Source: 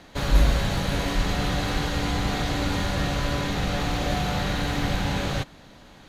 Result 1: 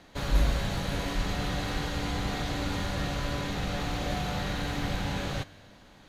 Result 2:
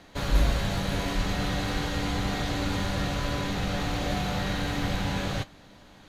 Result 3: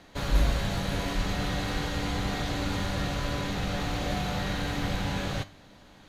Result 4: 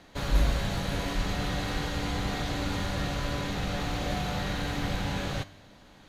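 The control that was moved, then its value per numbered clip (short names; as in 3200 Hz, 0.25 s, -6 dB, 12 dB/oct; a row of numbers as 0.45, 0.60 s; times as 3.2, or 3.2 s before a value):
resonator, decay: 1.9, 0.16, 0.4, 0.85 s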